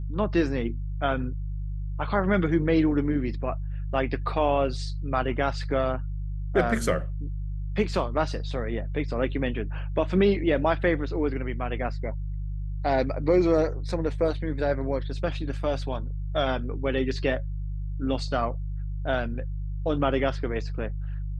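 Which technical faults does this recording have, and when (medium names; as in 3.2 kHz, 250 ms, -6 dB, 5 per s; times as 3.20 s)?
hum 50 Hz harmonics 3 -31 dBFS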